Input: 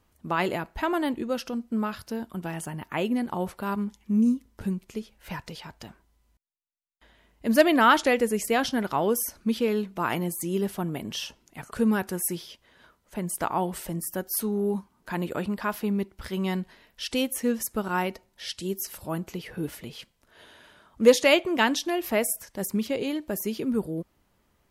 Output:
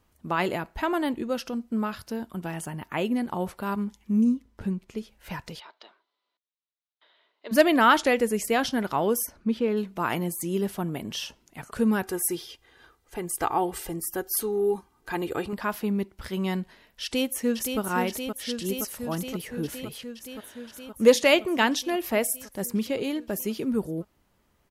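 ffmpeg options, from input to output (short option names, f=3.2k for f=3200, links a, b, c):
-filter_complex "[0:a]asettb=1/sr,asplit=3[a][b][c];[a]atrim=end=4.244[d];[b]atrim=start=4.24:end=4.98,asetpts=PTS-STARTPTS,afade=t=in:d=0.004:c=qsin,afade=t=out:st=0.736:d=0.004:c=qsin,lowpass=f=4k:p=1[e];[c]atrim=start=4.976[f];[d][e]acrossfade=d=0.004:c1=hsin:c2=qsin[g];[g][f]acrossfade=d=0.004:c1=qsin:c2=hsin,asplit=3[h][i][j];[h]afade=t=out:st=5.59:d=0.02[k];[i]highpass=f=450:w=0.5412,highpass=f=450:w=1.3066,equalizer=f=500:t=q:w=4:g=-6,equalizer=f=780:t=q:w=4:g=-7,equalizer=f=1.7k:t=q:w=4:g=-6,equalizer=f=2.5k:t=q:w=4:g=-5,equalizer=f=3.9k:t=q:w=4:g=7,lowpass=f=4k:w=0.5412,lowpass=f=4k:w=1.3066,afade=t=in:st=5.59:d=0.02,afade=t=out:st=7.51:d=0.02[l];[j]afade=t=in:st=7.51:d=0.02[m];[k][l][m]amix=inputs=3:normalize=0,asplit=3[n][o][p];[n]afade=t=out:st=9.25:d=0.02[q];[o]lowpass=f=1.8k:p=1,afade=t=in:st=9.25:d=0.02,afade=t=out:st=9.76:d=0.02[r];[p]afade=t=in:st=9.76:d=0.02[s];[q][r][s]amix=inputs=3:normalize=0,asettb=1/sr,asplit=3[t][u][v];[t]atrim=end=12.034[w];[u]atrim=start=12.03:end=15.53,asetpts=PTS-STARTPTS,afade=t=in:d=0.004:c=qsin,afade=t=out:st=3.496:d=0.004:c=qsin,aecho=1:1:2.5:0.65,atrim=end_sample=154350[x];[v]atrim=start=15.526[y];[w][x]acrossfade=d=0.004:c1=hsin:c2=qsin[z];[z][y]acrossfade=d=0.004:c1=qsin:c2=hsin,asplit=2[aa][ab];[ab]afade=t=in:st=17.03:d=0.01,afade=t=out:st=17.8:d=0.01,aecho=0:1:520|1040|1560|2080|2600|3120|3640|4160|4680|5200|5720|6240:0.501187|0.40095|0.32076|0.256608|0.205286|0.164229|0.131383|0.105107|0.0840853|0.0672682|0.0538146|0.0430517[ac];[aa][ac]amix=inputs=2:normalize=0"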